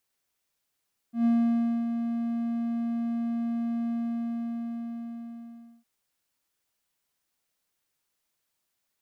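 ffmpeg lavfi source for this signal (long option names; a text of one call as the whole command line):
ffmpeg -f lavfi -i "aevalsrc='0.141*(1-4*abs(mod(233*t+0.25,1)-0.5))':duration=4.71:sample_rate=44100,afade=type=in:duration=0.121,afade=type=out:start_time=0.121:duration=0.6:silence=0.422,afade=type=out:start_time=2.76:duration=1.95" out.wav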